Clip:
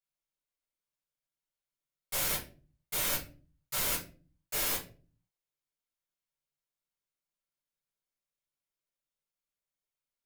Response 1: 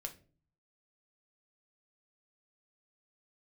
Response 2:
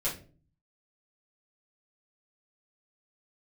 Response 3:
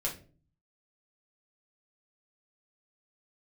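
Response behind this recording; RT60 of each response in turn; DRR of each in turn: 2; 0.40, 0.40, 0.40 seconds; 4.5, −9.0, −3.5 decibels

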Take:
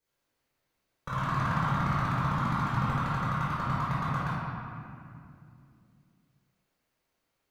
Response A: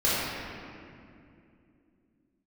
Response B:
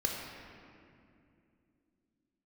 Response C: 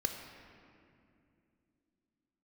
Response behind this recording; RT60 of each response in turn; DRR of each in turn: A; 2.6, 2.6, 2.6 seconds; −11.0, −1.0, 3.5 decibels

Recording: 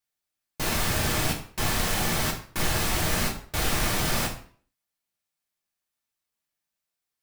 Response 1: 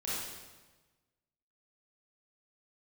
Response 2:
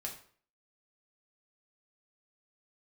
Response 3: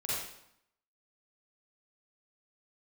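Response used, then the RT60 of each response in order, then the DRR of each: 2; 1.2, 0.50, 0.75 seconds; −9.0, −1.5, −8.5 decibels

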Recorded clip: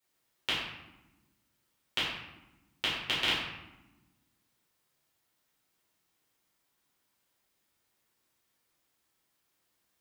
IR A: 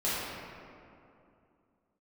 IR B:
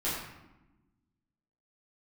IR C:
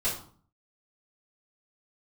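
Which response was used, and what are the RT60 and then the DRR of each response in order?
B; 2.6, 1.0, 0.50 seconds; −10.5, −10.0, −10.5 decibels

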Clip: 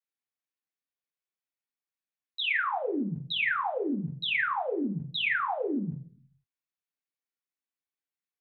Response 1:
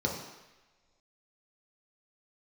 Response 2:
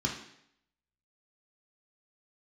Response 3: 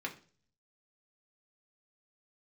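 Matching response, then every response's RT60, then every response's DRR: 3; non-exponential decay, 0.70 s, 0.40 s; −1.5, −1.0, −0.5 decibels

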